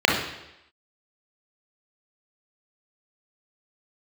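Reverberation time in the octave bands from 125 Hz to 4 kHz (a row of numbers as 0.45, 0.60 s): 0.75, 0.85, 0.90, 0.85, 0.90, 0.90 s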